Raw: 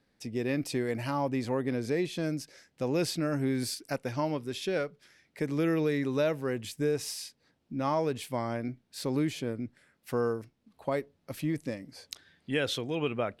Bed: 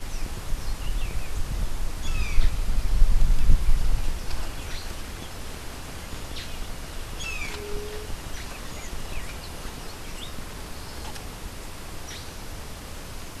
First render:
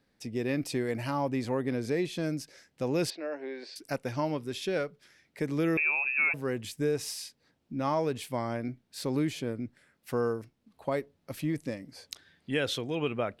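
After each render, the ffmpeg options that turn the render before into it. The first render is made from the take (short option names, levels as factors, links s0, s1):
-filter_complex "[0:a]asettb=1/sr,asplit=3[s0][s1][s2];[s0]atrim=end=3.104[s3];[s1]atrim=start=3.1:end=3.76,asetpts=PTS-STARTPTS,afade=t=in:d=0.004:c=qsin,afade=t=out:st=0.656:d=0.004:c=qsin,highpass=f=410:w=0.5412,highpass=f=410:w=1.3066,equalizer=f=1300:t=q:w=4:g=-10,equalizer=f=2300:t=q:w=4:g=-3,equalizer=f=3300:t=q:w=4:g=-7,lowpass=f=3800:w=0.5412,lowpass=f=3800:w=1.3066[s4];[s2]atrim=start=3.756[s5];[s3][s4]acrossfade=d=0.004:c1=hsin:c2=qsin[s6];[s6][s5]acrossfade=d=0.004:c1=qsin:c2=hsin,asettb=1/sr,asplit=3[s7][s8][s9];[s7]atrim=end=5.774[s10];[s8]atrim=start=5.77:end=6.34,asetpts=PTS-STARTPTS,afade=t=in:d=0.004:c=qsin,afade=t=out:st=0.566:d=0.004:c=qsin,lowpass=f=2400:t=q:w=0.5098,lowpass=f=2400:t=q:w=0.6013,lowpass=f=2400:t=q:w=0.9,lowpass=f=2400:t=q:w=2.563,afreqshift=-2800[s11];[s9]atrim=start=6.336[s12];[s10][s11]acrossfade=d=0.004:c1=hsin:c2=qsin[s13];[s13][s12]acrossfade=d=0.004:c1=qsin:c2=hsin"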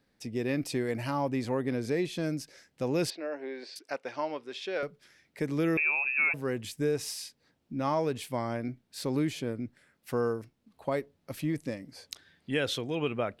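-filter_complex "[0:a]asettb=1/sr,asplit=3[s0][s1][s2];[s0]atrim=end=3.794[s3];[s1]atrim=start=3.79:end=4.83,asetpts=PTS-STARTPTS,afade=t=in:d=0.004:c=qsin,afade=t=out:st=1.036:d=0.004:c=qsin,highpass=450,lowpass=4500[s4];[s2]atrim=start=4.826[s5];[s3][s4]acrossfade=d=0.004:c1=hsin:c2=qsin[s6];[s6][s5]acrossfade=d=0.004:c1=qsin:c2=hsin"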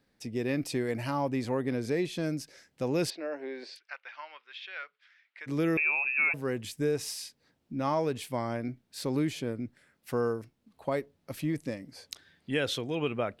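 -filter_complex "[0:a]asplit=3[s0][s1][s2];[s0]afade=t=out:st=3.75:d=0.02[s3];[s1]asuperpass=centerf=2100:order=4:qfactor=0.92,afade=t=in:st=3.75:d=0.02,afade=t=out:st=5.46:d=0.02[s4];[s2]afade=t=in:st=5.46:d=0.02[s5];[s3][s4][s5]amix=inputs=3:normalize=0"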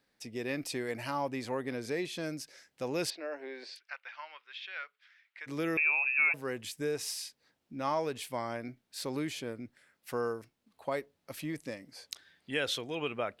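-af "lowshelf=f=380:g=-10.5"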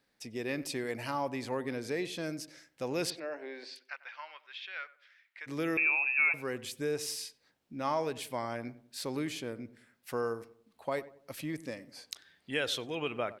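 -filter_complex "[0:a]asplit=2[s0][s1];[s1]adelay=94,lowpass=f=1200:p=1,volume=0.178,asplit=2[s2][s3];[s3]adelay=94,lowpass=f=1200:p=1,volume=0.4,asplit=2[s4][s5];[s5]adelay=94,lowpass=f=1200:p=1,volume=0.4,asplit=2[s6][s7];[s7]adelay=94,lowpass=f=1200:p=1,volume=0.4[s8];[s0][s2][s4][s6][s8]amix=inputs=5:normalize=0"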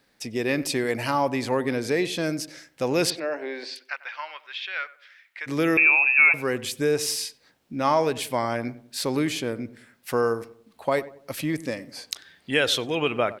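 -af "volume=3.35"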